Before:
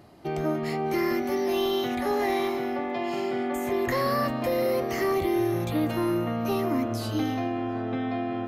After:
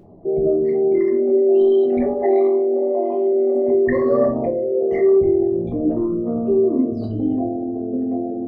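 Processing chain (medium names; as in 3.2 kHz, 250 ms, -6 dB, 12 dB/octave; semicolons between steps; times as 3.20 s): resonances exaggerated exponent 3; simulated room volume 200 m³, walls furnished, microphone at 1.3 m; trim +5 dB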